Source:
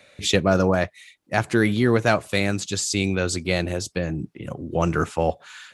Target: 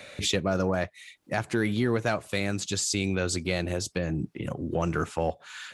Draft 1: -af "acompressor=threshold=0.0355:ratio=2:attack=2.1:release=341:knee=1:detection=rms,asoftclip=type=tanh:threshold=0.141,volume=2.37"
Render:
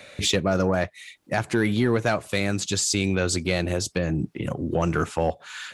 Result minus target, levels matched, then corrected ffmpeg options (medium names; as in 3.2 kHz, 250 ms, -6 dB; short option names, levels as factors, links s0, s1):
compression: peak gain reduction -4.5 dB
-af "acompressor=threshold=0.0126:ratio=2:attack=2.1:release=341:knee=1:detection=rms,asoftclip=type=tanh:threshold=0.141,volume=2.37"